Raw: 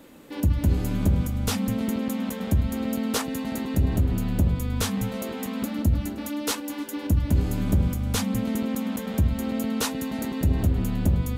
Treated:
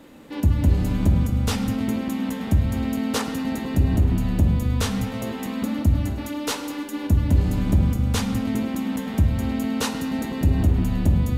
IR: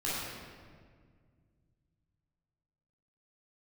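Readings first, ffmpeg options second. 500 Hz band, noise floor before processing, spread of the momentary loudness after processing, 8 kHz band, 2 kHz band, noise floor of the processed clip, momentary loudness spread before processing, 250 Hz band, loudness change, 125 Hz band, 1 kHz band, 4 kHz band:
+1.0 dB, −35 dBFS, 7 LU, −1.0 dB, +2.5 dB, −32 dBFS, 6 LU, +2.5 dB, +3.0 dB, +3.5 dB, +3.0 dB, +1.5 dB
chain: -filter_complex "[0:a]highshelf=frequency=8400:gain=-8,asplit=2[link_01][link_02];[1:a]atrim=start_sample=2205,afade=type=out:start_time=0.31:duration=0.01,atrim=end_sample=14112[link_03];[link_02][link_03]afir=irnorm=-1:irlink=0,volume=-12.5dB[link_04];[link_01][link_04]amix=inputs=2:normalize=0,volume=1dB"

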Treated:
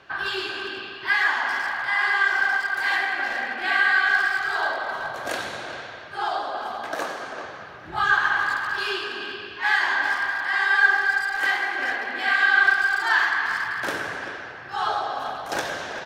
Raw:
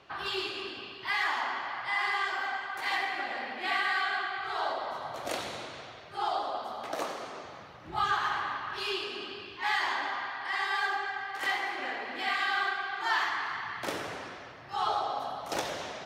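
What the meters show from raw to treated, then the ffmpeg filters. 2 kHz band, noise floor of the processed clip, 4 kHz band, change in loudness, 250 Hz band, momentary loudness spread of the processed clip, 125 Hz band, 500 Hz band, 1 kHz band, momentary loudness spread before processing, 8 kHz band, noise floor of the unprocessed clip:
+12.5 dB, −39 dBFS, +4.5 dB, +9.5 dB, +4.5 dB, 14 LU, +4.0 dB, +4.5 dB, +5.0 dB, 10 LU, +5.0 dB, −47 dBFS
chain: -filter_complex "[0:a]equalizer=frequency=1600:width_type=o:width=0.21:gain=13,asplit=2[link_01][link_02];[link_02]adelay=390,highpass=300,lowpass=3400,asoftclip=type=hard:threshold=-25.5dB,volume=-8dB[link_03];[link_01][link_03]amix=inputs=2:normalize=0,volume=4dB"

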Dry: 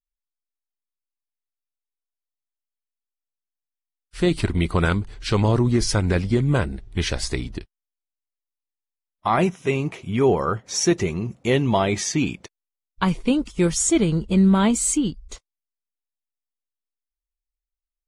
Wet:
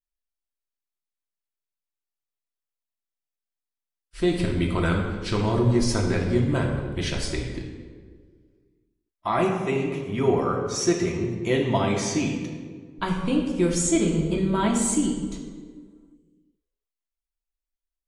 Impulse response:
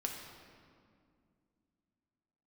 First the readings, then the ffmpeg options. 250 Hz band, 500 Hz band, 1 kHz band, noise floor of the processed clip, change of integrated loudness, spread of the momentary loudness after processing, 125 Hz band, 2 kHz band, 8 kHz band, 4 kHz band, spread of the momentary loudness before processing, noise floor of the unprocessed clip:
−2.5 dB, −1.5 dB, −2.5 dB, below −85 dBFS, −3.0 dB, 12 LU, −3.5 dB, −3.0 dB, −4.0 dB, −3.5 dB, 9 LU, below −85 dBFS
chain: -filter_complex "[1:a]atrim=start_sample=2205,asetrate=70560,aresample=44100[link_01];[0:a][link_01]afir=irnorm=-1:irlink=0"

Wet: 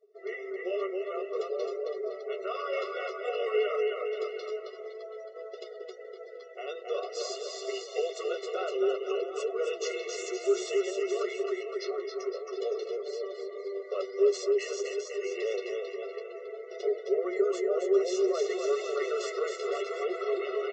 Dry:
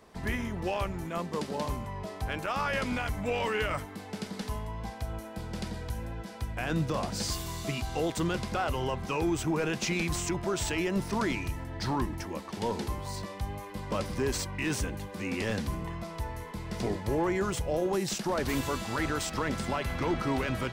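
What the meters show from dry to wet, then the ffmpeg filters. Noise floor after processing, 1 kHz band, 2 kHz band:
−45 dBFS, −6.0 dB, −5.5 dB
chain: -filter_complex "[0:a]asplit=2[link_01][link_02];[link_02]aecho=0:1:270|513|731.7|928.5|1106:0.631|0.398|0.251|0.158|0.1[link_03];[link_01][link_03]amix=inputs=2:normalize=0,afftdn=noise_reduction=22:noise_floor=-46,equalizer=frequency=400:width_type=o:width=0.33:gain=11,equalizer=frequency=800:width_type=o:width=0.33:gain=-5,equalizer=frequency=1600:width_type=o:width=0.33:gain=-10,asplit=2[link_04][link_05];[link_05]alimiter=limit=-20.5dB:level=0:latency=1:release=20,volume=-1dB[link_06];[link_04][link_06]amix=inputs=2:normalize=0,aresample=16000,aresample=44100,flanger=delay=6.3:depth=6.8:regen=-22:speed=0.53:shape=triangular,afftfilt=real='re*eq(mod(floor(b*sr/1024/370),2),1)':imag='im*eq(mod(floor(b*sr/1024/370),2),1)':win_size=1024:overlap=0.75,volume=-2.5dB"

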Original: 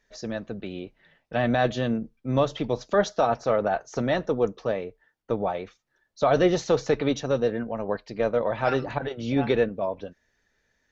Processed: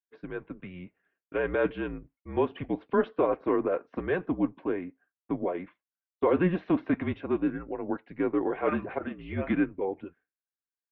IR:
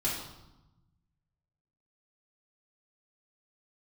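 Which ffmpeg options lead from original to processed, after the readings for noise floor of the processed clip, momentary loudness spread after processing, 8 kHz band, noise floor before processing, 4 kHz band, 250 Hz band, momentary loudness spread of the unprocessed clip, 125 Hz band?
below −85 dBFS, 14 LU, can't be measured, −73 dBFS, below −15 dB, −0.5 dB, 12 LU, −6.5 dB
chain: -af "highpass=frequency=350:width_type=q:width=0.5412,highpass=frequency=350:width_type=q:width=1.307,lowpass=frequency=2800:width_type=q:width=0.5176,lowpass=frequency=2800:width_type=q:width=0.7071,lowpass=frequency=2800:width_type=q:width=1.932,afreqshift=-180,agate=range=-33dB:threshold=-49dB:ratio=3:detection=peak,bandreject=frequency=1300:width=18,volume=-2.5dB"

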